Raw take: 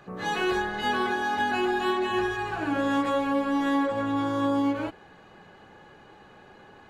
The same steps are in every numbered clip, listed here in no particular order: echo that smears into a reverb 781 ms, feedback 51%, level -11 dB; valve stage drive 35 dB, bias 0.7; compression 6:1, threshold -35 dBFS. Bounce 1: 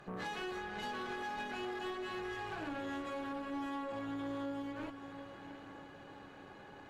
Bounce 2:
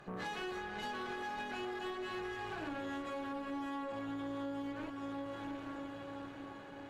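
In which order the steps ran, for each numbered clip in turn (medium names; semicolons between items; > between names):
compression > echo that smears into a reverb > valve stage; echo that smears into a reverb > compression > valve stage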